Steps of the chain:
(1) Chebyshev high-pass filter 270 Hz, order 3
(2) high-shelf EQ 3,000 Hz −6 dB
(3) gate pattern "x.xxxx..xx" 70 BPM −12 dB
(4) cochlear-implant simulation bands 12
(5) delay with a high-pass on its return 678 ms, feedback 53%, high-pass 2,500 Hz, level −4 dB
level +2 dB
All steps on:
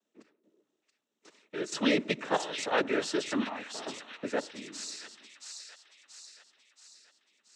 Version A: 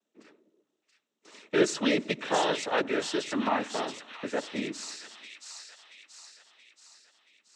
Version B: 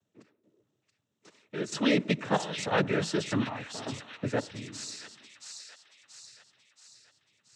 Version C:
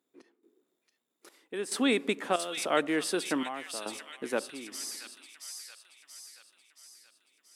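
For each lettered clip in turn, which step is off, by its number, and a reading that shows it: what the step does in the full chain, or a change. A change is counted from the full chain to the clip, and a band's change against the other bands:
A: 3, 1 kHz band +2.5 dB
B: 1, 125 Hz band +12.0 dB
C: 4, 125 Hz band −4.0 dB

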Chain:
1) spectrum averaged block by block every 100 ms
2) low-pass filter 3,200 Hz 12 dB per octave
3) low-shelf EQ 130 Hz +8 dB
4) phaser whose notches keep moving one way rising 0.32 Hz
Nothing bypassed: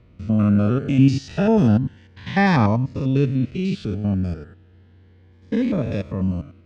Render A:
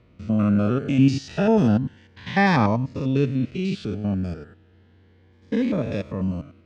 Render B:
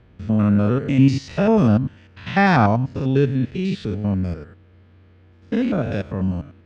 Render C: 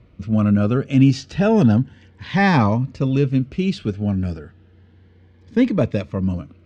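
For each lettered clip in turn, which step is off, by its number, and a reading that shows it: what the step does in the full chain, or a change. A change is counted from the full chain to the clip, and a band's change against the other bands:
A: 3, 125 Hz band −4.0 dB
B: 4, 1 kHz band +2.5 dB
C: 1, change in integrated loudness +1.5 LU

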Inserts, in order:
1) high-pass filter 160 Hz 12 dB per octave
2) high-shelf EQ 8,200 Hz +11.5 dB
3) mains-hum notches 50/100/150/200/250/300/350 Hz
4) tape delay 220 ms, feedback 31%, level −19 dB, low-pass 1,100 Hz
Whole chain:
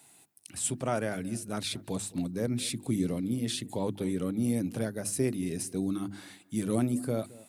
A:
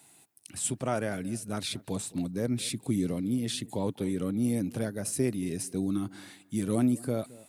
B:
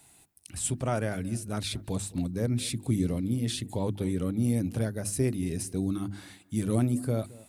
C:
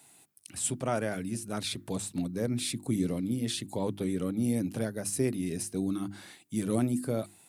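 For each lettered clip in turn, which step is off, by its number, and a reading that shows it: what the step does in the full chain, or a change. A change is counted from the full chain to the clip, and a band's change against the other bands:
3, change in momentary loudness spread +1 LU
1, 125 Hz band +6.0 dB
4, echo-to-direct ratio −32.0 dB to none audible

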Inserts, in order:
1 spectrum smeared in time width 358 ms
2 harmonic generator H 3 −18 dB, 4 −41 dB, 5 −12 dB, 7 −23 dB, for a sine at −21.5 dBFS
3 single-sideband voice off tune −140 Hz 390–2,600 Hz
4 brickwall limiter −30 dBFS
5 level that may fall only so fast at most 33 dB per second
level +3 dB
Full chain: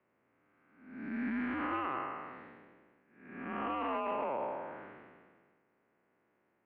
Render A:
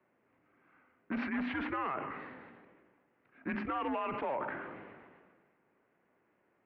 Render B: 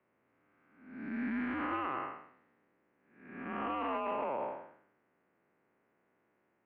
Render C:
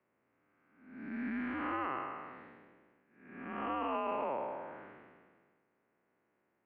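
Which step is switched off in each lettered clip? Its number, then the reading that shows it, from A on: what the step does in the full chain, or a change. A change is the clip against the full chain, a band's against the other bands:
1, 125 Hz band +3.0 dB
5, change in momentary loudness spread −4 LU
2, change in crest factor +1.5 dB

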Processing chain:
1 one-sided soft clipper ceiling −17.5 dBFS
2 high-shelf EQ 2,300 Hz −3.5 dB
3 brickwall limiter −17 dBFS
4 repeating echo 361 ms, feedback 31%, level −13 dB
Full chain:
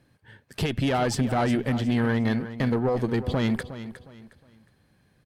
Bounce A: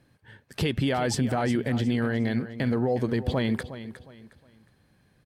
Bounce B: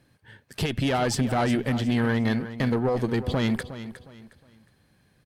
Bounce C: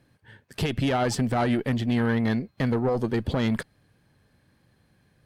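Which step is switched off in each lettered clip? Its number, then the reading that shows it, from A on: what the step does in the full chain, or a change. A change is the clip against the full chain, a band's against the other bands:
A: 1, 1 kHz band −2.0 dB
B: 2, 8 kHz band +2.5 dB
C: 4, change in momentary loudness spread −4 LU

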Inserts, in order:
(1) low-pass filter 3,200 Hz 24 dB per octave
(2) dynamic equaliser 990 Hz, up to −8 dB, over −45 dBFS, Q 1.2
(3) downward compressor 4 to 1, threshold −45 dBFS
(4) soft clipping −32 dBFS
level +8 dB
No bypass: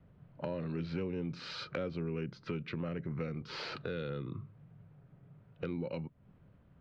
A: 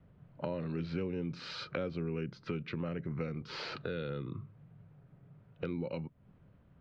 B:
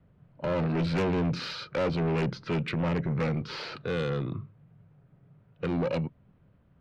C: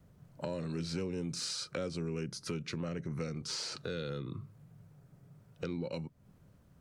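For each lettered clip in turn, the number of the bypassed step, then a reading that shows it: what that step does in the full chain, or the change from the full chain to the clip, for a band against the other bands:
4, distortion level −25 dB
3, average gain reduction 12.5 dB
1, 4 kHz band +6.0 dB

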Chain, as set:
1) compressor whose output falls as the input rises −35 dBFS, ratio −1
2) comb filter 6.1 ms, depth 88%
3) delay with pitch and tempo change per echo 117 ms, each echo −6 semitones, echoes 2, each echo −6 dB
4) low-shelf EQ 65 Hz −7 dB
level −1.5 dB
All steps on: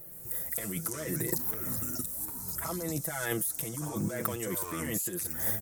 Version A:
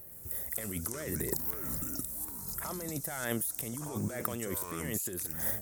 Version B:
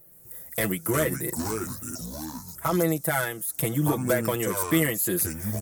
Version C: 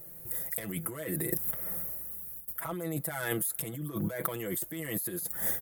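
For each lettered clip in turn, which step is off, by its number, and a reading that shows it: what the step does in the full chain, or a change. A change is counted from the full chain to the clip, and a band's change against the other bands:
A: 2, change in crest factor +2.0 dB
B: 1, change in crest factor −6.5 dB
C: 3, change in integrated loudness −1.0 LU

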